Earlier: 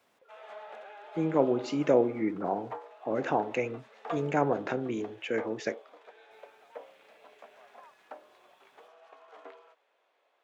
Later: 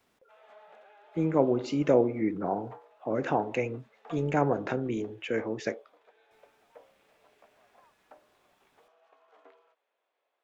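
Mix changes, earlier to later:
background −9.0 dB
master: remove high-pass filter 190 Hz 6 dB per octave

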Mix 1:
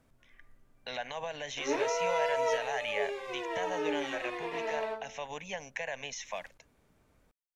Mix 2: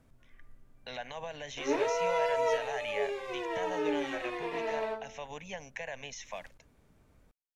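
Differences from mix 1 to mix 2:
speech −3.5 dB
master: add low-shelf EQ 250 Hz +6 dB

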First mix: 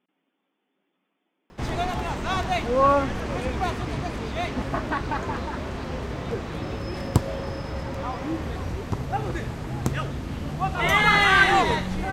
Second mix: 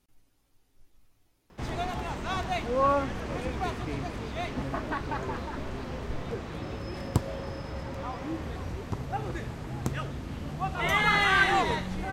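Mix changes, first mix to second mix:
speech: remove linear-phase brick-wall band-pass 170–3,600 Hz
background −5.5 dB

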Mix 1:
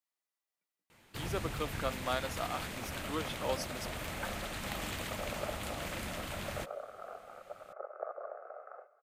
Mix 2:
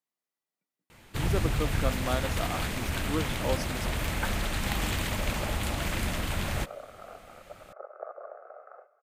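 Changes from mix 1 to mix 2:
speech: add low-shelf EQ 400 Hz +12 dB
first sound +7.5 dB
master: add low-shelf EQ 85 Hz +10.5 dB

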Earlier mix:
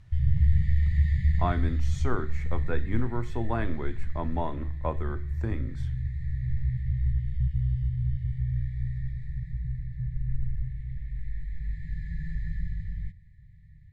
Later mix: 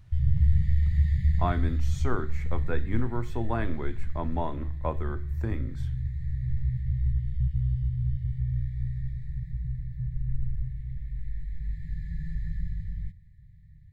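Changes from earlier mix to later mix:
background: add parametric band 1,800 Hz −5.5 dB 1.4 octaves
master: remove low-pass filter 10,000 Hz 12 dB per octave

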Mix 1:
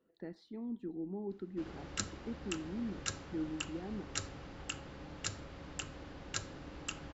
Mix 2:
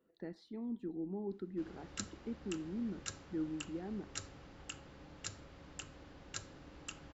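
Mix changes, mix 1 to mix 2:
background −6.5 dB
master: add high-shelf EQ 11,000 Hz +9 dB

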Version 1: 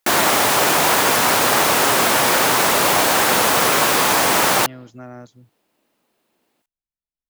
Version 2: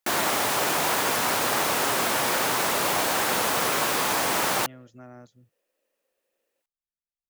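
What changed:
speech −8.5 dB
first sound −8.5 dB
second sound: add formant filter e

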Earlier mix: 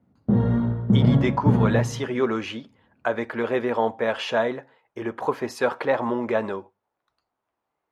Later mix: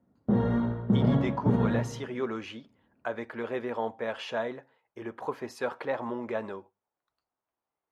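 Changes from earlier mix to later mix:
speech −9.0 dB
background: add parametric band 100 Hz −8.5 dB 2.4 octaves

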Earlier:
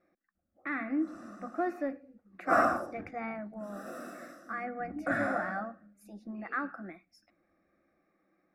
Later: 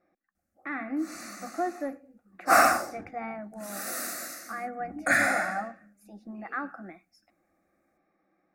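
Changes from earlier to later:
background: remove moving average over 20 samples
master: add parametric band 790 Hz +7 dB 0.31 octaves

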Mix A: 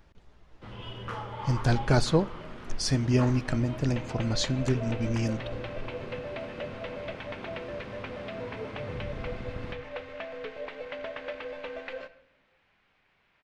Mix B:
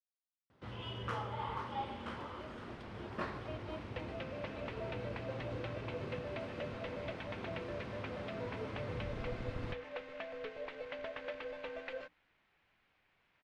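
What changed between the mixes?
speech: muted
second sound −3.5 dB
reverb: off

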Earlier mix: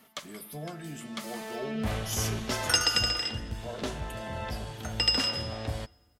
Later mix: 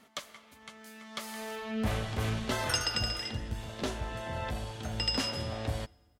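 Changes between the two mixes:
speech: muted
second sound −6.5 dB

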